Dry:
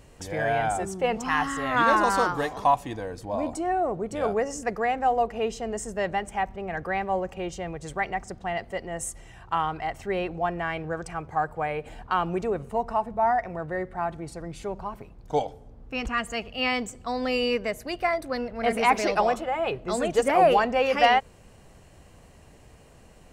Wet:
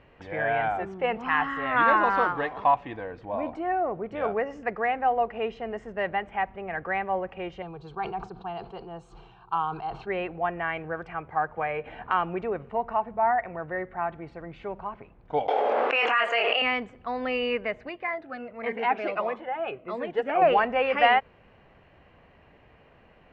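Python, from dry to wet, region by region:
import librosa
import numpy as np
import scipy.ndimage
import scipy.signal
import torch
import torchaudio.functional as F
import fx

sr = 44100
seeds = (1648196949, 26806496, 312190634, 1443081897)

y = fx.chain(x, sr, fx.peak_eq(hz=4200.0, db=14.0, octaves=0.21),
    fx.fixed_phaser(hz=390.0, stages=8),
    fx.sustainer(db_per_s=65.0), at=(7.62, 10.07))
y = fx.chain(y, sr, fx.notch(hz=4700.0, q=8.2),
    fx.doubler(ms=15.0, db=-11.5),
    fx.band_squash(depth_pct=70), at=(11.57, 12.13))
y = fx.chain(y, sr, fx.highpass(hz=460.0, slope=24),
    fx.doubler(ms=26.0, db=-5),
    fx.env_flatten(amount_pct=100), at=(15.48, 16.62))
y = fx.chain(y, sr, fx.highpass(hz=260.0, slope=6),
    fx.high_shelf(hz=4000.0, db=-10.0),
    fx.notch_cascade(direction='falling', hz=1.5), at=(17.89, 20.42))
y = scipy.signal.sosfilt(scipy.signal.butter(4, 2600.0, 'lowpass', fs=sr, output='sos'), y)
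y = fx.tilt_eq(y, sr, slope=2.0)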